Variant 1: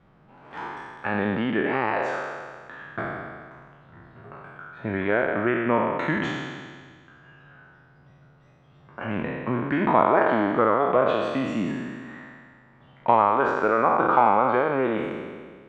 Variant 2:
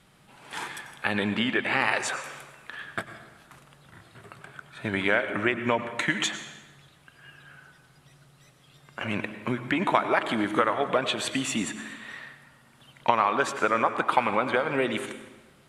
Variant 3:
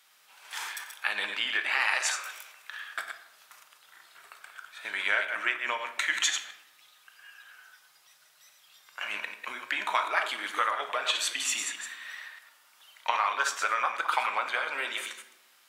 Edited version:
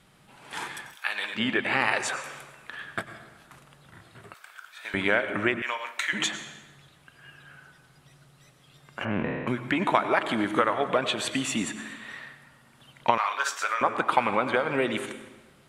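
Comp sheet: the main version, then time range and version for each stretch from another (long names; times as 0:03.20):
2
0:00.93–0:01.38: punch in from 3, crossfade 0.10 s
0:04.34–0:04.94: punch in from 3
0:05.62–0:06.13: punch in from 3
0:09.05–0:09.47: punch in from 1
0:13.18–0:13.81: punch in from 3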